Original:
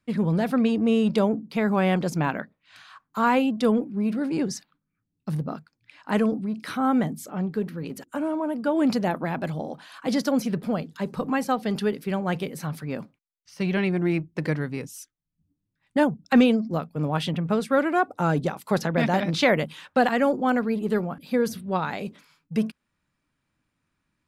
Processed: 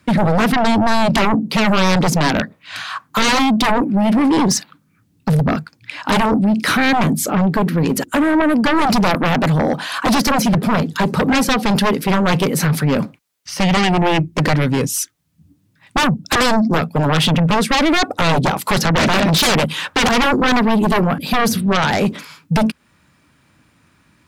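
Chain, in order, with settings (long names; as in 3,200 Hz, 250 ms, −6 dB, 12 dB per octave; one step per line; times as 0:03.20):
high-pass filter 53 Hz 24 dB per octave
in parallel at +2 dB: downward compressor, threshold −33 dBFS, peak gain reduction 18.5 dB
on the sum: sine wavefolder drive 17 dB, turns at −4.5 dBFS
level −6.5 dB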